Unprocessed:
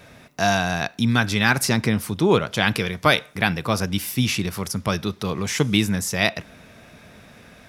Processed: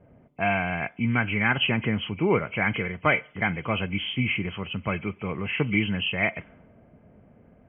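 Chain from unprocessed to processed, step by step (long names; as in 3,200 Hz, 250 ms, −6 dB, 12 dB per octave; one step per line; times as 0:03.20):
hearing-aid frequency compression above 2,000 Hz 4 to 1
low-pass that shuts in the quiet parts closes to 550 Hz, open at −15 dBFS
level −5 dB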